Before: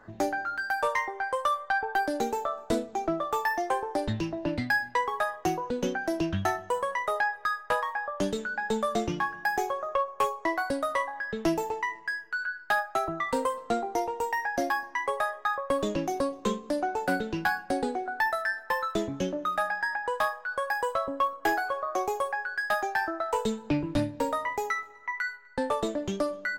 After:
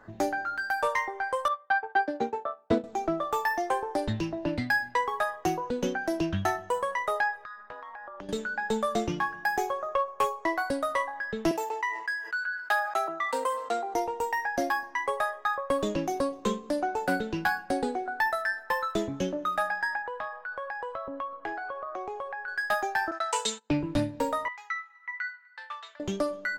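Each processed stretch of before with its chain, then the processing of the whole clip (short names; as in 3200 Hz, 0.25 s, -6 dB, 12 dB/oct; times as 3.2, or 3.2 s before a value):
1.48–2.84 transient shaper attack +2 dB, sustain -10 dB + BPF 120–3100 Hz + three-band expander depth 100%
7.44–8.29 Gaussian blur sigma 1.8 samples + compressor 12:1, threshold -36 dBFS + AM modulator 220 Hz, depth 40%
11.51–13.94 HPF 480 Hz + sustainer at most 70 dB/s
20.02–22.48 LPF 2900 Hz + compressor 3:1, threshold -34 dBFS
23.11–23.7 gate -38 dBFS, range -23 dB + weighting filter ITU-R 468
24.48–26 HPF 1300 Hz 24 dB/oct + air absorption 200 m
whole clip: dry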